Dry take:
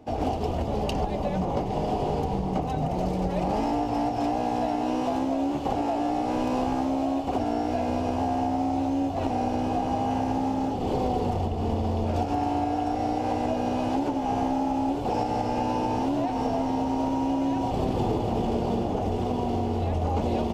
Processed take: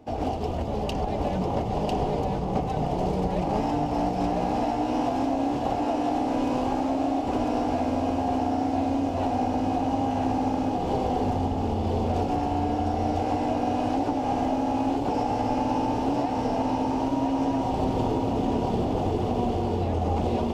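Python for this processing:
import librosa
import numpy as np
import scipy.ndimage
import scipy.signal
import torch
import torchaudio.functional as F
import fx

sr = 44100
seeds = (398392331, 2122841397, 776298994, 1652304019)

p1 = x + fx.echo_single(x, sr, ms=999, db=-3.0, dry=0)
p2 = fx.doppler_dist(p1, sr, depth_ms=0.1)
y = p2 * 10.0 ** (-1.0 / 20.0)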